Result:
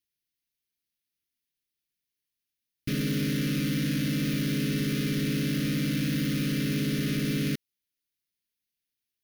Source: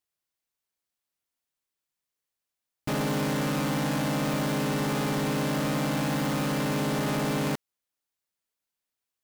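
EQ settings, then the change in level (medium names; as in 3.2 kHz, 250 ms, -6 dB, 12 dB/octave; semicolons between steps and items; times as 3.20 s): Butterworth band-stop 840 Hz, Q 0.53; peaking EQ 7.7 kHz -13.5 dB 0.26 oct; +1.5 dB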